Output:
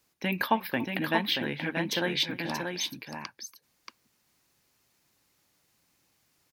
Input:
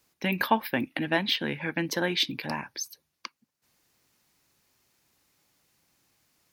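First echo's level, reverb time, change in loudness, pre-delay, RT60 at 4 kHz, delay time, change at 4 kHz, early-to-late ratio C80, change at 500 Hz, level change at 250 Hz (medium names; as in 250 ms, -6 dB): -20.0 dB, no reverb, -1.5 dB, no reverb, no reverb, 284 ms, -1.0 dB, no reverb, -1.0 dB, -1.0 dB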